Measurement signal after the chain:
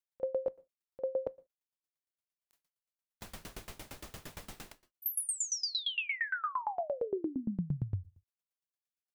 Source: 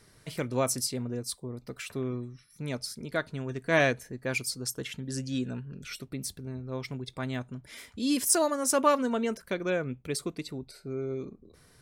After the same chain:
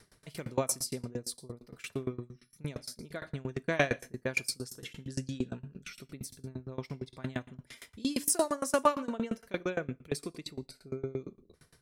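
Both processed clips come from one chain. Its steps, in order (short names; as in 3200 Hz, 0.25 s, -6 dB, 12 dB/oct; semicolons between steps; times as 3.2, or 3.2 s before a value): non-linear reverb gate 0.21 s falling, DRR 12 dB; dB-ramp tremolo decaying 8.7 Hz, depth 25 dB; gain +3 dB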